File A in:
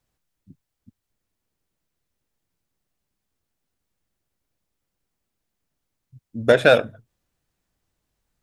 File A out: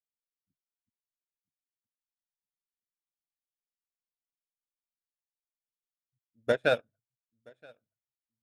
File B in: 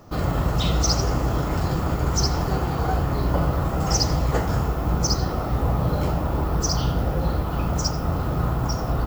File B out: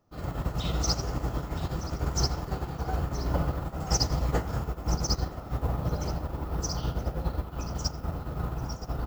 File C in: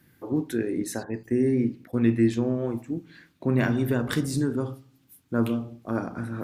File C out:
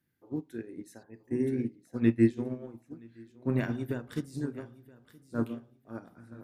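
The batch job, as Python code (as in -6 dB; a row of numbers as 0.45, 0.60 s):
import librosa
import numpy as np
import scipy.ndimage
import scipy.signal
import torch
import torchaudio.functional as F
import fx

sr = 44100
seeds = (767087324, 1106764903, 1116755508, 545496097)

p1 = fx.notch(x, sr, hz=1100.0, q=29.0)
p2 = p1 + fx.echo_feedback(p1, sr, ms=973, feedback_pct=23, wet_db=-11, dry=0)
p3 = fx.upward_expand(p2, sr, threshold_db=-30.0, expansion=2.5)
y = librosa.util.normalize(p3) * 10.0 ** (-12 / 20.0)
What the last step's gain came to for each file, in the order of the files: -9.5, -3.5, 0.0 dB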